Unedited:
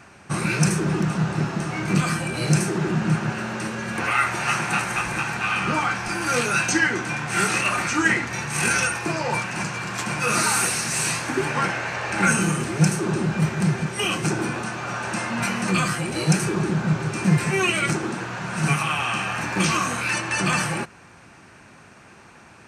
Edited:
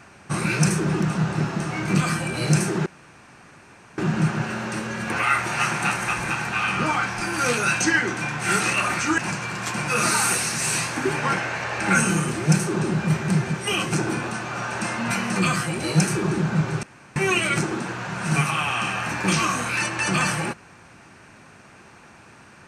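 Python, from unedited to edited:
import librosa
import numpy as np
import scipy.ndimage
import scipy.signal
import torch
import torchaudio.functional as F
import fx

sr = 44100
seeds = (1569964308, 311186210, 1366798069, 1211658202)

y = fx.edit(x, sr, fx.insert_room_tone(at_s=2.86, length_s=1.12),
    fx.cut(start_s=8.06, length_s=1.44),
    fx.room_tone_fill(start_s=17.15, length_s=0.33), tone=tone)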